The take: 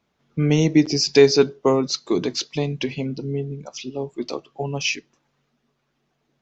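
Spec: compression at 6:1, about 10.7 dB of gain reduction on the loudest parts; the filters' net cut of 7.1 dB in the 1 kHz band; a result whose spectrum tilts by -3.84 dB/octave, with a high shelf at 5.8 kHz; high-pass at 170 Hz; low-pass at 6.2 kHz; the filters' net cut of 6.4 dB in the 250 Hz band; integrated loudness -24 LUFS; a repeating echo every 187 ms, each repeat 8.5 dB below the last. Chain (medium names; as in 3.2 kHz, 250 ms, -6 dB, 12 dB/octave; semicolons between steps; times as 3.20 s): high-pass 170 Hz; low-pass 6.2 kHz; peaking EQ 250 Hz -7 dB; peaking EQ 1 kHz -9 dB; treble shelf 5.8 kHz +4 dB; compression 6:1, threshold -23 dBFS; feedback delay 187 ms, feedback 38%, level -8.5 dB; trim +5 dB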